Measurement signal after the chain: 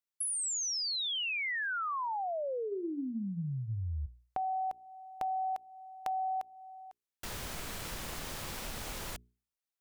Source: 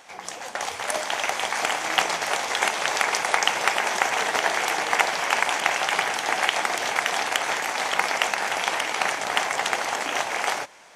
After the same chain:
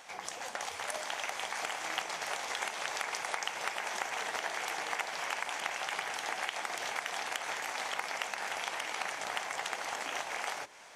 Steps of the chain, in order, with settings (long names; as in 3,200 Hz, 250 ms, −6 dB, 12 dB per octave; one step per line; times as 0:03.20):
parametric band 260 Hz −2.5 dB 2.9 octaves
mains-hum notches 60/120/180/240/300/360/420 Hz
downward compressor 2.5 to 1, threshold −35 dBFS
level −2.5 dB